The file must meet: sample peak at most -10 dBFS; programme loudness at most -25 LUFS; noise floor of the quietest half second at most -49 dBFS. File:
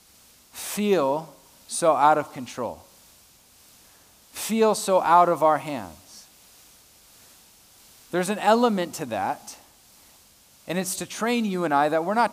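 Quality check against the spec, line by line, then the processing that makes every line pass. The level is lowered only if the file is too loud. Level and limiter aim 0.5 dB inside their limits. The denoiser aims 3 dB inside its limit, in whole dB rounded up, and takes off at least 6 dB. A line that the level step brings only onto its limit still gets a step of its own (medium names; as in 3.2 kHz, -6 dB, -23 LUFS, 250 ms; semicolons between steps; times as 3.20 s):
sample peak -5.5 dBFS: fail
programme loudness -23.5 LUFS: fail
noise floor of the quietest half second -55 dBFS: pass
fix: trim -2 dB; peak limiter -10.5 dBFS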